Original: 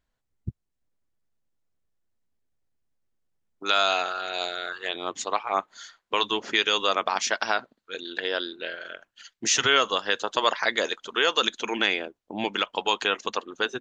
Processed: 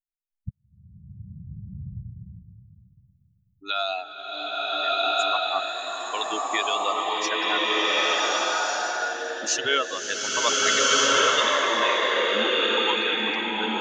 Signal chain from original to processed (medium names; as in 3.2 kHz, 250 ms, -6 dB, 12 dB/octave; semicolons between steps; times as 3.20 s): expander on every frequency bin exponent 2; swelling reverb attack 1460 ms, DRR -8 dB